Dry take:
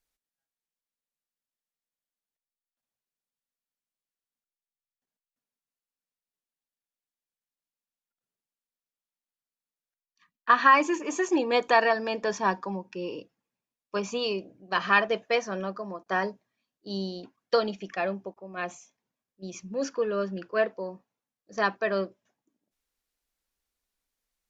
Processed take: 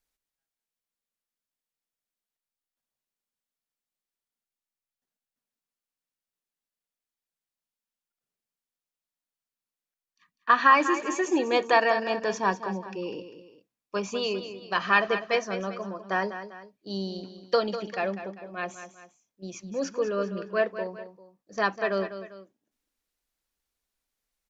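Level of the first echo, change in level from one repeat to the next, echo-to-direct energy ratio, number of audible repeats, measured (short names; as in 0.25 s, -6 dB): -11.0 dB, -7.5 dB, -10.5 dB, 2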